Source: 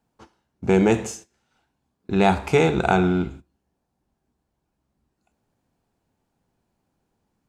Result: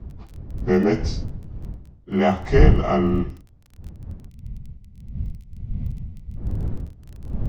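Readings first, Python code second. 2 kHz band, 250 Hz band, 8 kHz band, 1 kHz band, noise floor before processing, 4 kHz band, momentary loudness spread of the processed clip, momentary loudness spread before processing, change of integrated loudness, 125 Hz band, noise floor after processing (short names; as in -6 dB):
-3.5 dB, 0.0 dB, n/a, -3.5 dB, -77 dBFS, -3.0 dB, 22 LU, 13 LU, -2.0 dB, +5.0 dB, -48 dBFS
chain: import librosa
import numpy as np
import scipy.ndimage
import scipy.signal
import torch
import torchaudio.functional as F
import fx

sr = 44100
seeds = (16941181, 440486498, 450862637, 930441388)

y = fx.partial_stretch(x, sr, pct=91)
y = fx.dmg_wind(y, sr, seeds[0], corner_hz=91.0, level_db=-25.0)
y = scipy.signal.sosfilt(scipy.signal.butter(4, 7200.0, 'lowpass', fs=sr, output='sos'), y)
y = fx.dmg_crackle(y, sr, seeds[1], per_s=20.0, level_db=-35.0)
y = fx.spec_box(y, sr, start_s=4.29, length_s=2.08, low_hz=250.0, high_hz=1900.0, gain_db=-12)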